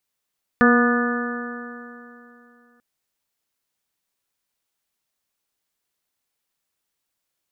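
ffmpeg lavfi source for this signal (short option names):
-f lavfi -i "aevalsrc='0.211*pow(10,-3*t/2.87)*sin(2*PI*239.18*t)+0.126*pow(10,-3*t/2.87)*sin(2*PI*479.43*t)+0.0596*pow(10,-3*t/2.87)*sin(2*PI*721.82*t)+0.0282*pow(10,-3*t/2.87)*sin(2*PI*967.4*t)+0.119*pow(10,-3*t/2.87)*sin(2*PI*1217.2*t)+0.0944*pow(10,-3*t/2.87)*sin(2*PI*1472.21*t)+0.119*pow(10,-3*t/2.87)*sin(2*PI*1733.39*t)':d=2.19:s=44100"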